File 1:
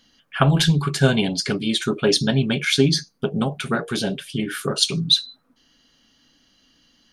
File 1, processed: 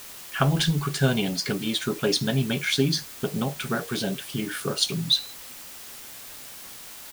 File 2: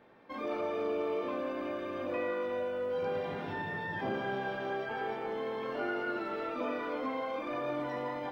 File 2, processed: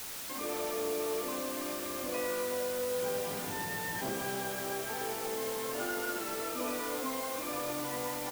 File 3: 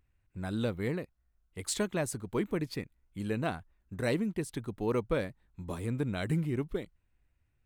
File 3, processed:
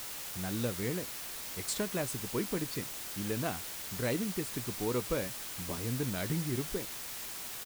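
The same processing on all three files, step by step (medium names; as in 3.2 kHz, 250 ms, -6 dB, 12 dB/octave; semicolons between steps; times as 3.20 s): in parallel at -3 dB: compression, threshold -31 dBFS; on the sum: word length cut 6-bit, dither triangular; doubling 16 ms -13.5 dB; trim -6 dB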